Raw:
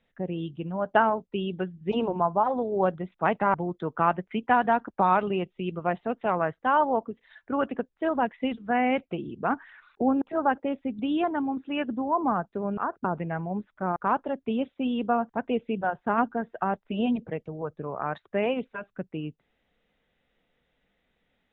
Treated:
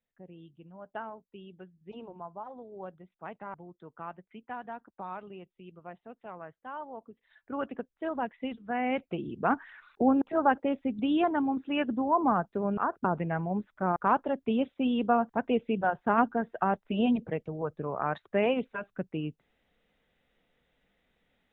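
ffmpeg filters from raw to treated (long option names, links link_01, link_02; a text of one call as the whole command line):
ffmpeg -i in.wav -af "afade=type=in:start_time=6.95:duration=0.67:silence=0.281838,afade=type=in:start_time=8.77:duration=0.62:silence=0.446684" out.wav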